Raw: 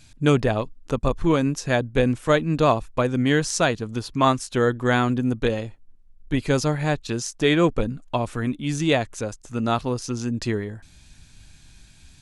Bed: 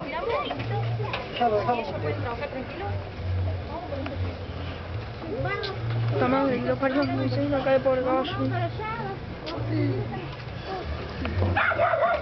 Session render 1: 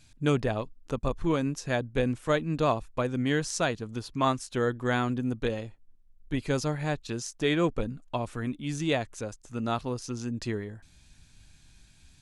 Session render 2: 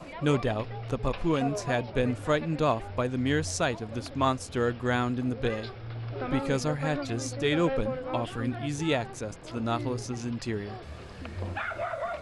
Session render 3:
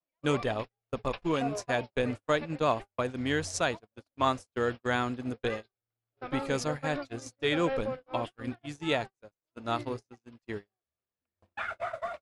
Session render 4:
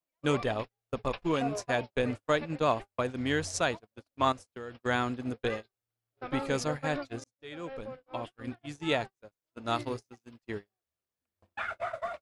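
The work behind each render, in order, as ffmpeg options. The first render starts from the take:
-af "volume=-7dB"
-filter_complex "[1:a]volume=-10.5dB[a];[0:a][a]amix=inputs=2:normalize=0"
-af "lowshelf=f=270:g=-7.5,agate=range=-50dB:threshold=-33dB:ratio=16:detection=peak"
-filter_complex "[0:a]asettb=1/sr,asplit=3[a][b][c];[a]atrim=end=4.324[d];[b]atrim=start=4.32:end=4.75,asetpts=PTS-STARTPTS,afade=t=in:d=0.004:c=qsin,afade=t=out:st=0.426:d=0.004:c=qsin,acompressor=threshold=-42dB:ratio=3:attack=3.2:release=140:knee=1:detection=peak[e];[c]atrim=start=4.746[f];[d][e]acrossfade=d=0.004:c1=hsin:c2=qsin[g];[g][f]acrossfade=d=0.004:c1=qsin:c2=hsin,asettb=1/sr,asplit=3[h][i][j];[h]atrim=end=9.674[k];[i]atrim=start=9.67:end=10.37,asetpts=PTS-STARTPTS,afade=t=in:d=0.004:c=qsin,afade=t=out:st=0.696:d=0.004:c=qsin,highshelf=f=3.6k:g=6[l];[j]atrim=start=10.366[m];[k][l]acrossfade=d=0.004:c1=hsin:c2=qsin[n];[n][m]acrossfade=d=0.004:c1=qsin:c2=hsin,asplit=2[o][p];[o]atrim=end=7.24,asetpts=PTS-STARTPTS,afade=t=out:st=7.236:d=0.004:c=hsin[q];[p]atrim=start=7.24,asetpts=PTS-STARTPTS,afade=t=in:d=1.66[r];[q][r]concat=n=2:v=0:a=1"

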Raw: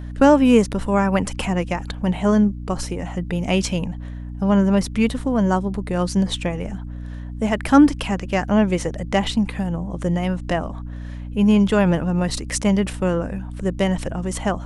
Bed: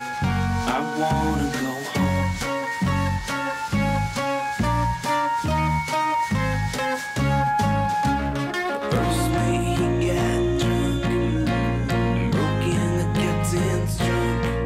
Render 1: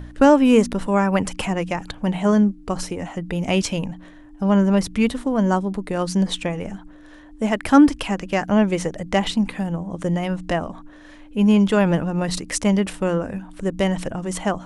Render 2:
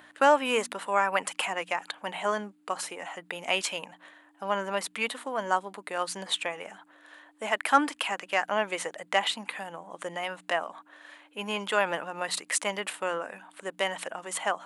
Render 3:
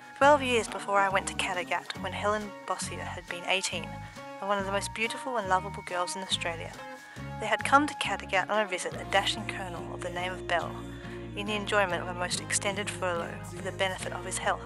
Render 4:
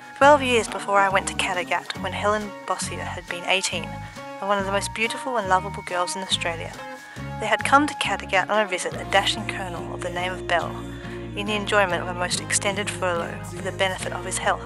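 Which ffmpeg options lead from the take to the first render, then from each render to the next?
-af "bandreject=f=60:t=h:w=4,bandreject=f=120:t=h:w=4,bandreject=f=180:t=h:w=4,bandreject=f=240:t=h:w=4"
-af "highpass=840,equalizer=f=5.6k:t=o:w=0.52:g=-9"
-filter_complex "[1:a]volume=-18.5dB[a];[0:a][a]amix=inputs=2:normalize=0"
-af "volume=6.5dB,alimiter=limit=-3dB:level=0:latency=1"

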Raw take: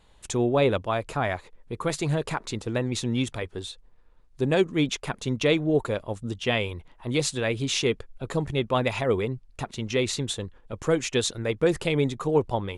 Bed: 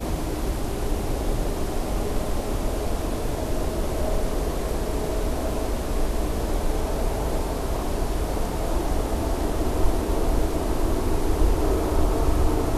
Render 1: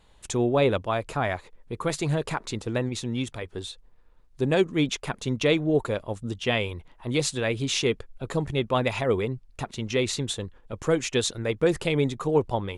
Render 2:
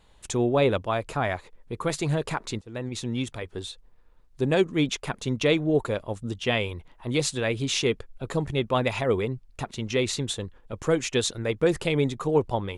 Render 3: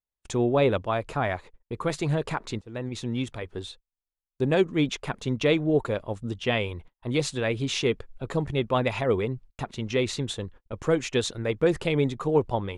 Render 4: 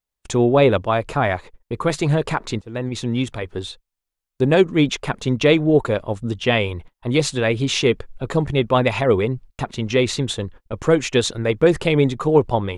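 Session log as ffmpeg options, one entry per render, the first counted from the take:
-filter_complex "[0:a]asplit=3[a][b][c];[a]atrim=end=2.892[d];[b]atrim=start=2.888:end=3.482,asetpts=PTS-STARTPTS,volume=-3dB[e];[c]atrim=start=3.478[f];[d][e]acrossfade=d=0.004:c1=hsin:c2=hsin[g];[g][f]acrossfade=d=0.004:c1=hsin:c2=hsin"
-filter_complex "[0:a]asplit=2[a][b];[a]atrim=end=2.61,asetpts=PTS-STARTPTS,afade=t=out:st=2.606:d=0.004:c=hsin:silence=0.0668344[c];[b]atrim=start=2.61,asetpts=PTS-STARTPTS,afade=t=in:d=0.42:silence=0.0668344[d];[c][d]concat=n=2:v=0:a=1"
-af "highshelf=f=5.6k:g=-8.5,agate=range=-39dB:threshold=-44dB:ratio=16:detection=peak"
-af "volume=7.5dB"

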